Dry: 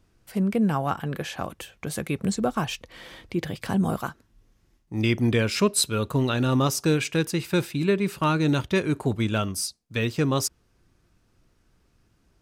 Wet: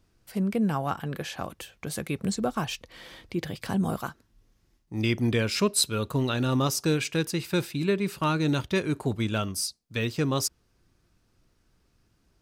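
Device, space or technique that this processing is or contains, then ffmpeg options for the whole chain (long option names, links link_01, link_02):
presence and air boost: -af "equalizer=frequency=4600:width_type=o:width=0.77:gain=3,highshelf=frequency=12000:gain=4,volume=-3dB"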